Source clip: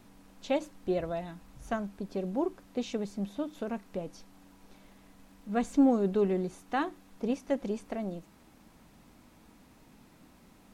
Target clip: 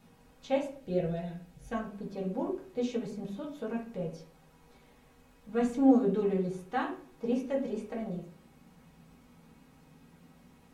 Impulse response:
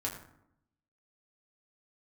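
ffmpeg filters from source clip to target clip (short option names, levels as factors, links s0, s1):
-filter_complex "[0:a]asettb=1/sr,asplit=3[s0][s1][s2];[s0]atrim=end=0.774[s3];[s1]atrim=start=0.77:end=1.73,asetpts=PTS-STARTPTS,afade=t=in:d=0.004:c=qsin,afade=t=out:st=0.956:d=0.004:c=qsin,equalizer=f=1100:t=o:w=0.5:g=-11.5[s4];[s2]atrim=start=1.726[s5];[s3][s4]acrossfade=d=0.004:c1=hsin:c2=qsin[s6];[s6][s5]acrossfade=d=0.004:c1=qsin:c2=hsin[s7];[1:a]atrim=start_sample=2205,asetrate=74970,aresample=44100[s8];[s7][s8]afir=irnorm=-1:irlink=0"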